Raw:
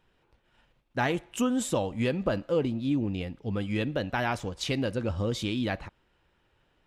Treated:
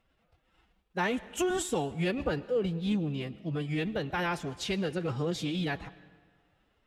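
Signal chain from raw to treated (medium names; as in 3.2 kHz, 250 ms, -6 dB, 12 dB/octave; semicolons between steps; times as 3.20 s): formant-preserving pitch shift +6.5 st; reverberation RT60 1.6 s, pre-delay 80 ms, DRR 18.5 dB; trim -2 dB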